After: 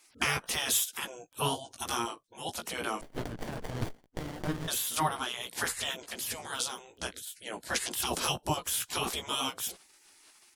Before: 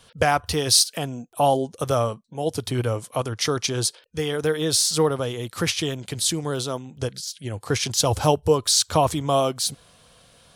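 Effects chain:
double-tracking delay 17 ms −5 dB
gate on every frequency bin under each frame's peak −15 dB weak
0:03.01–0:04.68: windowed peak hold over 33 samples

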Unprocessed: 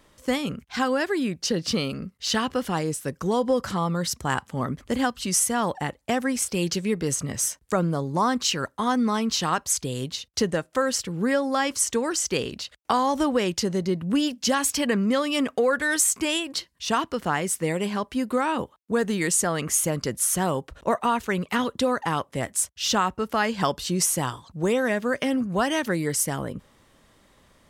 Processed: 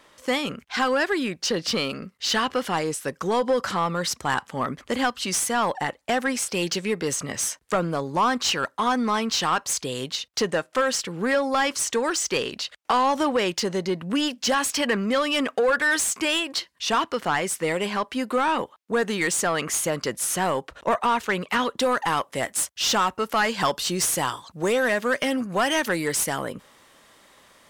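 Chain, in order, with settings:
high-shelf EQ 7,400 Hz +2 dB, from 0:21.80 +11 dB
mid-hump overdrive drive 19 dB, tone 3,900 Hz, clips at −4.5 dBFS
level −6 dB

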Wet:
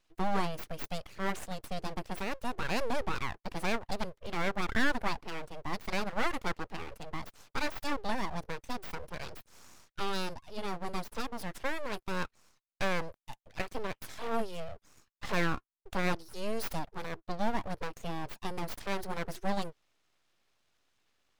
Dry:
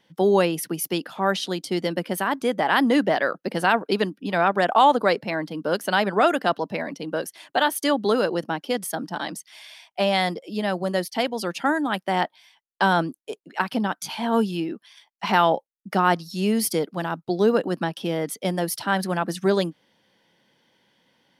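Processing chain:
dynamic equaliser 2,600 Hz, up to −5 dB, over −39 dBFS, Q 1.4
full-wave rectification
level −9 dB

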